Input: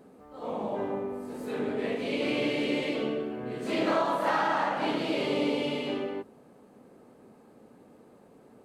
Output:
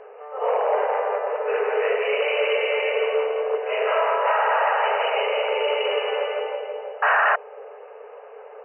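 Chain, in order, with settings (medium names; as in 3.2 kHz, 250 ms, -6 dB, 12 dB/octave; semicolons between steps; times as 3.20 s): 3.14–3.63 s: tilt EQ -4 dB/octave; on a send: two-band feedback delay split 770 Hz, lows 329 ms, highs 169 ms, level -3.5 dB; on the sum: gain riding within 5 dB 0.5 s; 7.02–7.36 s: painted sound noise 570–1900 Hz -24 dBFS; in parallel at -6 dB: sine folder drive 10 dB, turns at -12 dBFS; on the sum: FFT band-pass 400–3000 Hz; trim -1 dB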